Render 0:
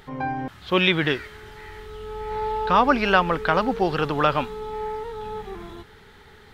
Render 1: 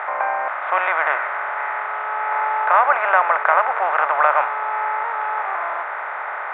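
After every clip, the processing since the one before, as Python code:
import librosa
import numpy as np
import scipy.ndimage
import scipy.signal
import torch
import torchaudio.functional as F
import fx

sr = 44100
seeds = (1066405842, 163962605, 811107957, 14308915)

y = fx.bin_compress(x, sr, power=0.4)
y = scipy.signal.sosfilt(scipy.signal.ellip(3, 1.0, 70, [620.0, 2000.0], 'bandpass', fs=sr, output='sos'), y)
y = F.gain(torch.from_numpy(y), 1.0).numpy()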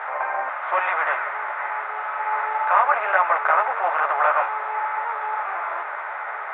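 y = fx.ensemble(x, sr)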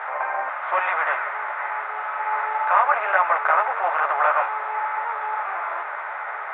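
y = fx.low_shelf(x, sr, hz=220.0, db=-5.5)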